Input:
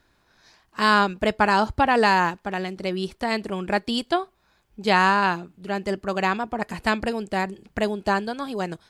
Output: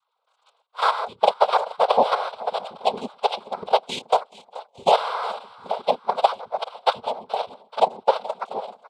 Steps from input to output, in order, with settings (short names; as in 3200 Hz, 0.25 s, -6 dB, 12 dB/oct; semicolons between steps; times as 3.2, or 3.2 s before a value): sine-wave speech; transient shaper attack +12 dB, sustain -3 dB; in parallel at -1 dB: limiter -8.5 dBFS, peak gain reduction 11 dB; on the sum: low shelf 340 Hz -3.5 dB; level quantiser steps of 10 dB; frequency-shifting echo 0.428 s, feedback 50%, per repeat +57 Hz, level -18.5 dB; noise vocoder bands 6; fixed phaser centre 750 Hz, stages 4; gain -2 dB